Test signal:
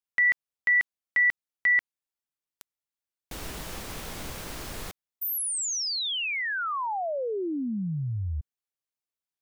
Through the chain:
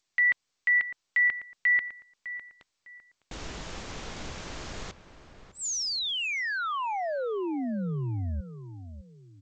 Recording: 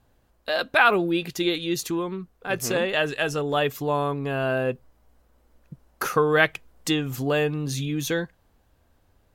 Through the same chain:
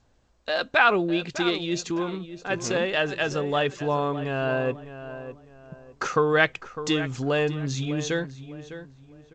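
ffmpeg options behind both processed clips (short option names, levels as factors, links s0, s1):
-filter_complex "[0:a]asplit=2[s0][s1];[s1]adelay=605,lowpass=f=2300:p=1,volume=0.251,asplit=2[s2][s3];[s3]adelay=605,lowpass=f=2300:p=1,volume=0.32,asplit=2[s4][s5];[s5]adelay=605,lowpass=f=2300:p=1,volume=0.32[s6];[s0][s2][s4][s6]amix=inputs=4:normalize=0,volume=0.891" -ar 16000 -c:a g722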